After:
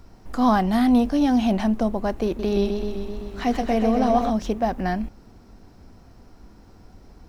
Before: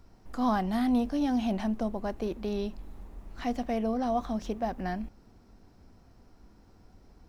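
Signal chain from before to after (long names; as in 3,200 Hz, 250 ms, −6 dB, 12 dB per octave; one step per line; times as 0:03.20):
0:02.26–0:04.30: feedback echo with a swinging delay time 128 ms, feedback 74%, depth 70 cents, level −7 dB
level +8.5 dB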